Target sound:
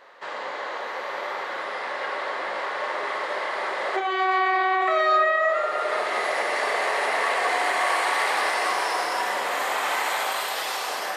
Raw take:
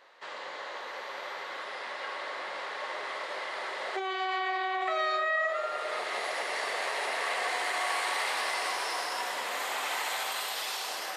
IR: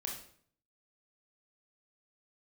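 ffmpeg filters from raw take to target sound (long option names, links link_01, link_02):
-filter_complex "[0:a]asplit=2[link_01][link_02];[1:a]atrim=start_sample=2205,lowpass=2300[link_03];[link_02][link_03]afir=irnorm=-1:irlink=0,volume=0.5dB[link_04];[link_01][link_04]amix=inputs=2:normalize=0,volume=4dB"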